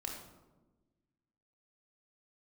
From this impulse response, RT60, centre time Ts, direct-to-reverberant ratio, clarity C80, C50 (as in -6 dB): 1.2 s, 44 ms, -0.5 dB, 6.0 dB, 3.5 dB